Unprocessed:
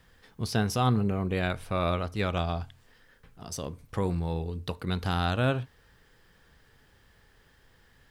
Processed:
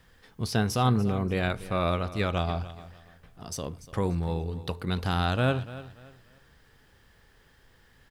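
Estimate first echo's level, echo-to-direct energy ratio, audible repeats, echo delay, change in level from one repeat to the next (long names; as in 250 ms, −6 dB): −16.0 dB, −15.5 dB, 2, 291 ms, −10.5 dB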